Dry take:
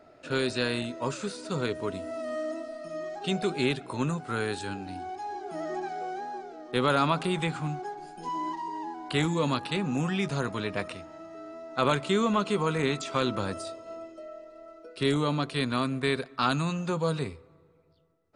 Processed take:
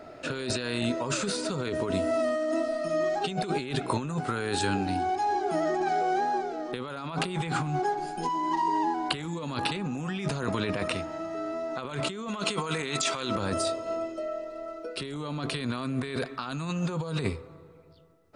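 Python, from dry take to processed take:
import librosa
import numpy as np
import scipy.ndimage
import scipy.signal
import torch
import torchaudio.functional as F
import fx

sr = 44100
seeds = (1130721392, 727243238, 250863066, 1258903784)

y = fx.tilt_eq(x, sr, slope=2.0, at=(12.28, 13.36))
y = fx.over_compress(y, sr, threshold_db=-35.0, ratio=-1.0)
y = y * librosa.db_to_amplitude(5.0)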